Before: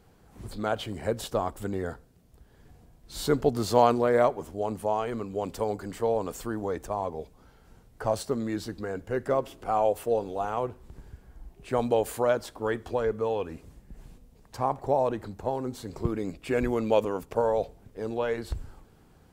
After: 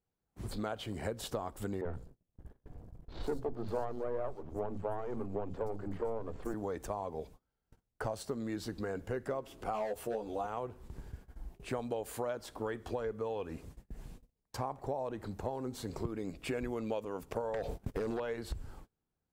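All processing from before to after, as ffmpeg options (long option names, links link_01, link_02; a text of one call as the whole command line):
ffmpeg -i in.wav -filter_complex "[0:a]asettb=1/sr,asplit=3[link_01][link_02][link_03];[link_01]atrim=end=1.814[link_04];[link_02]atrim=start=1.81:end=6.54,asetpts=PTS-STARTPTS,afade=type=in:duration=0.004:curve=qsin,afade=type=out:start_time=4.726:duration=0.004:curve=qsin,aeval=exprs='if(lt(val(0),0),0.251*val(0),val(0))':channel_layout=same,tiltshelf=frequency=1400:gain=8.5,acrossover=split=210|4100[link_05][link_06][link_07];[link_05]adelay=40[link_08];[link_07]adelay=120[link_09];[link_08][link_06][link_09]amix=inputs=3:normalize=0,atrim=end_sample=208593[link_10];[link_03]atrim=start=6.536[link_11];[link_04][link_10]acrossfade=duration=0.004:curve1=hsin:curve2=qsin[link_12];[link_12][link_11]acrossfade=duration=0.004:curve1=qsin:curve2=hsin,asettb=1/sr,asplit=3[link_13][link_14][link_15];[link_13]atrim=end=9.734[link_16];[link_14]atrim=start=9.73:end=10.47,asetpts=PTS-STARTPTS,afade=type=in:duration=0.004:curve=qsin,afade=type=out:start_time=0.736:duration=0.004:curve=qsin,asoftclip=type=hard:threshold=-19dB,asplit=2[link_17][link_18];[link_18]adelay=14,volume=-2dB[link_19];[link_17][link_19]amix=inputs=2:normalize=0,atrim=end_sample=32634[link_20];[link_15]atrim=start=10.466[link_21];[link_16][link_20]acrossfade=duration=0.004:curve1=hsin:curve2=qsin[link_22];[link_22][link_21]acrossfade=duration=0.004:curve1=qsin:curve2=hsin,asettb=1/sr,asplit=3[link_23][link_24][link_25];[link_23]atrim=end=17.544[link_26];[link_24]atrim=start=17.54:end=18.2,asetpts=PTS-STARTPTS,afade=type=in:duration=0.004:curve=qsin,afade=type=out:start_time=0.656:duration=0.004:curve=qsin,agate=range=-28dB:threshold=-52dB:ratio=16:release=100:detection=peak,acompressor=threshold=-38dB:ratio=10:attack=3.2:release=140:knee=1:detection=peak,aeval=exprs='0.0944*sin(PI/2*6.31*val(0)/0.0944)':channel_layout=same[link_27];[link_25]atrim=start=18.196[link_28];[link_26][link_27]acrossfade=duration=0.004:curve1=hsin:curve2=qsin[link_29];[link_29][link_28]acrossfade=duration=0.004:curve1=qsin:curve2=hsin,agate=range=-30dB:threshold=-49dB:ratio=16:detection=peak,acompressor=threshold=-34dB:ratio=6" out.wav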